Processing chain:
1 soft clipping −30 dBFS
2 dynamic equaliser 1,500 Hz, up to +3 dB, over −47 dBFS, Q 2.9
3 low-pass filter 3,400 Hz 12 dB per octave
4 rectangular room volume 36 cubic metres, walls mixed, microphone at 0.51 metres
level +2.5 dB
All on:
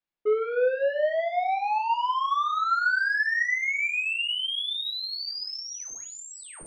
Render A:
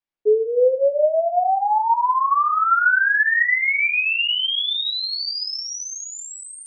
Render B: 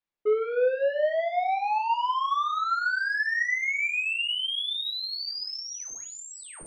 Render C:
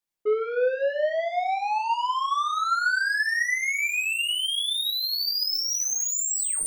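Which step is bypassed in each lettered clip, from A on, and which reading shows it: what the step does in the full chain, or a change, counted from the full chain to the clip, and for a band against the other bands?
1, distortion level −13 dB
2, change in momentary loudness spread −1 LU
3, 8 kHz band +13.0 dB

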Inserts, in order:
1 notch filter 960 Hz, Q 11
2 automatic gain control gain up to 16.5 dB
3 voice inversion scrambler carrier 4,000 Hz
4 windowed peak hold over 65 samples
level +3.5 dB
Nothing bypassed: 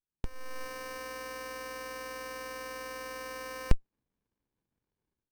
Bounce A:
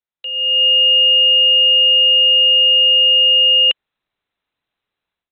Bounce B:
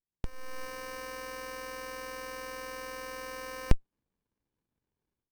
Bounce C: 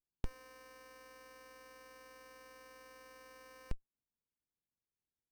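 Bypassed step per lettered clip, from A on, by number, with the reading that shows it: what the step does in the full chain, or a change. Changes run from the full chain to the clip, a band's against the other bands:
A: 4, change in crest factor −19.5 dB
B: 1, 250 Hz band +1.5 dB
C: 2, change in momentary loudness spread −1 LU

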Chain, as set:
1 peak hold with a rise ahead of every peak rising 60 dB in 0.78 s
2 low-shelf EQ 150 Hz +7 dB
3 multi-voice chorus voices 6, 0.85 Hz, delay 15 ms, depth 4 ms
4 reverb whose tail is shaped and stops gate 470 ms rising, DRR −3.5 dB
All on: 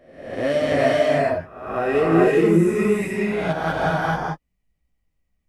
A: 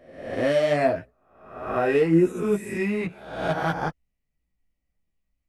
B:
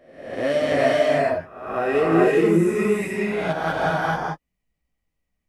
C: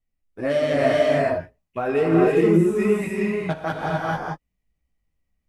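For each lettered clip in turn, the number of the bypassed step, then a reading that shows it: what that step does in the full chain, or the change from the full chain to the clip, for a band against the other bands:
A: 4, change in momentary loudness spread +1 LU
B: 2, 125 Hz band −3.0 dB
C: 1, 2 kHz band −2.0 dB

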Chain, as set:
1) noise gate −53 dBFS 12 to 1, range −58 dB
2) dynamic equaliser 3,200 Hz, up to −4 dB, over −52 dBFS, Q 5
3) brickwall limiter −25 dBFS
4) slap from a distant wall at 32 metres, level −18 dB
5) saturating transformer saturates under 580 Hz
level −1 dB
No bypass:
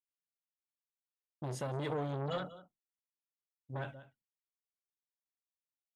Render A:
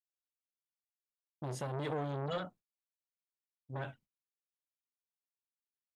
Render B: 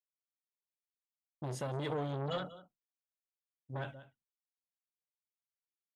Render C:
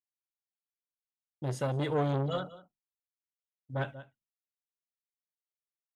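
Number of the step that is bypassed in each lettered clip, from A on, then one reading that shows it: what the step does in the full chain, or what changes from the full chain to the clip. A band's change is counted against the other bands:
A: 4, change in momentary loudness spread −1 LU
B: 2, 4 kHz band +2.5 dB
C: 3, average gain reduction 3.5 dB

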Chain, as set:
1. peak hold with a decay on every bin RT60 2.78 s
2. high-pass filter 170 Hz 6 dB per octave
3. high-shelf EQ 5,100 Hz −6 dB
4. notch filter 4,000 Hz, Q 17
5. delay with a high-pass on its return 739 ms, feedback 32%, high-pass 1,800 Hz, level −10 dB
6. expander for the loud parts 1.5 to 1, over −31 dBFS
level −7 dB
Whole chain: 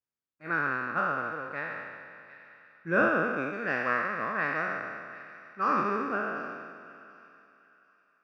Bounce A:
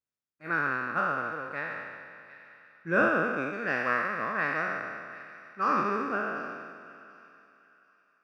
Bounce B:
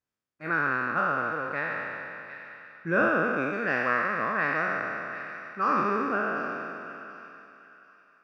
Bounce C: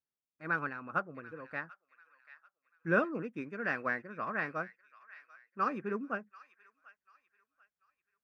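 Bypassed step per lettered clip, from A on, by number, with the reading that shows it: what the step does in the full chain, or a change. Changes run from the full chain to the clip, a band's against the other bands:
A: 3, 4 kHz band +2.0 dB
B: 6, change in crest factor −2.5 dB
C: 1, 125 Hz band +4.0 dB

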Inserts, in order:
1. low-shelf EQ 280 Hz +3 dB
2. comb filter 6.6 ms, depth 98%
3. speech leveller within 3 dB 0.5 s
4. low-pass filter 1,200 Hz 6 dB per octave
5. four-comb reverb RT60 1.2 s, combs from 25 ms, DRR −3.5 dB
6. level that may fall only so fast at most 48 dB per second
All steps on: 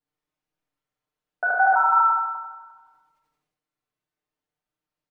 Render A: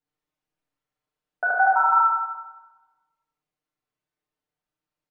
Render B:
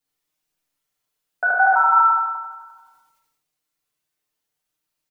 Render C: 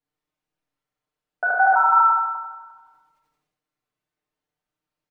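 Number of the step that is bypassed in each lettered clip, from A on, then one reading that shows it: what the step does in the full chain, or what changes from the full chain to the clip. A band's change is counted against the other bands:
6, change in momentary loudness spread −2 LU
4, change in integrated loudness +3.0 LU
3, change in integrated loudness +2.0 LU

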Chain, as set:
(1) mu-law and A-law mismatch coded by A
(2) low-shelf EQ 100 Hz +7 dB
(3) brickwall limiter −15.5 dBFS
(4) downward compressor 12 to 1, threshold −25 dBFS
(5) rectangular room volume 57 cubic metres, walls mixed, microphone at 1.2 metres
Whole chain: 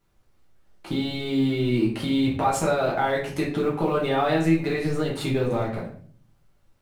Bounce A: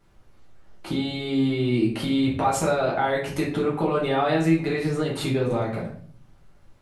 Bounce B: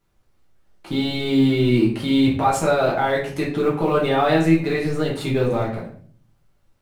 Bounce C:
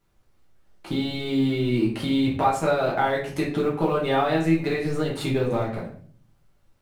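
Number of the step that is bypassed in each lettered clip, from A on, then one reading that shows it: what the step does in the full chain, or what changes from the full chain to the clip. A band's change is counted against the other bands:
1, distortion level −27 dB
4, average gain reduction 3.5 dB
3, average gain reduction 2.5 dB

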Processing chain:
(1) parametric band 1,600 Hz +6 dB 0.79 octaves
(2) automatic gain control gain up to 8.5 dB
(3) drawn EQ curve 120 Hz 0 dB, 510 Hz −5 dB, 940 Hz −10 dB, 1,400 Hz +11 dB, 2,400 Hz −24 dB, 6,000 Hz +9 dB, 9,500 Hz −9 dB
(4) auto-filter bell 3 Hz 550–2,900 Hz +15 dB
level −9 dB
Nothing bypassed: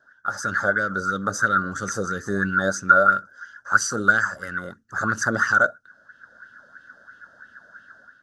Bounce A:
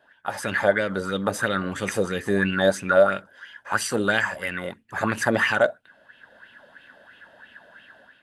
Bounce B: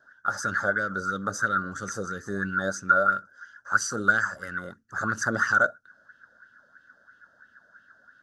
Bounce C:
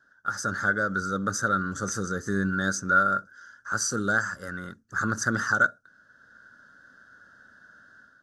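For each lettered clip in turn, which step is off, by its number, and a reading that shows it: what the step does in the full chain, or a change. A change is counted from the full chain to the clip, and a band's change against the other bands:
3, 1 kHz band −7.5 dB
2, change in momentary loudness spread −2 LU
4, 500 Hz band −5.0 dB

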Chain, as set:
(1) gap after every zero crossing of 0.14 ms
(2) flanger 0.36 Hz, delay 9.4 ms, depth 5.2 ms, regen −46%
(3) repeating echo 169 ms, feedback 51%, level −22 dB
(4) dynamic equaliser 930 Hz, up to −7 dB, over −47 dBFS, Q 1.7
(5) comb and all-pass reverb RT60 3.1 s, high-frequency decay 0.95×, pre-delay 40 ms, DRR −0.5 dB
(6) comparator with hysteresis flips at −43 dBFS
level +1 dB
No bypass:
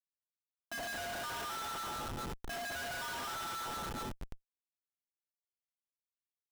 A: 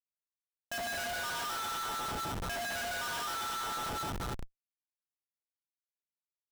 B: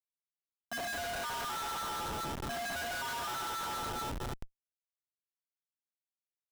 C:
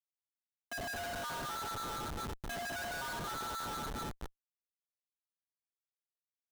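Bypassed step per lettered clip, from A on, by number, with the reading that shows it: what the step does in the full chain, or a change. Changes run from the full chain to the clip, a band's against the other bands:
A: 2, 250 Hz band −2.0 dB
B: 4, change in integrated loudness +3.0 LU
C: 1, distortion level −7 dB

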